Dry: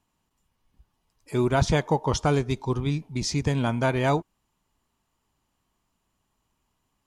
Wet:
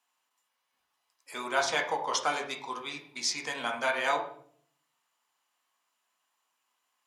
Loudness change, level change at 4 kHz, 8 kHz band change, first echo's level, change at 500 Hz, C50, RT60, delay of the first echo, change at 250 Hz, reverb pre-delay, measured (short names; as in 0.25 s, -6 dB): -5.5 dB, +1.0 dB, 0.0 dB, none, -8.0 dB, 8.5 dB, 0.55 s, none, -18.0 dB, 4 ms